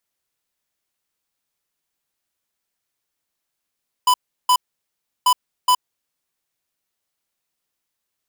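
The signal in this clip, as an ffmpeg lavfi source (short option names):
-f lavfi -i "aevalsrc='0.2*(2*lt(mod(998*t,1),0.5)-1)*clip(min(mod(mod(t,1.19),0.42),0.07-mod(mod(t,1.19),0.42))/0.005,0,1)*lt(mod(t,1.19),0.84)':d=2.38:s=44100"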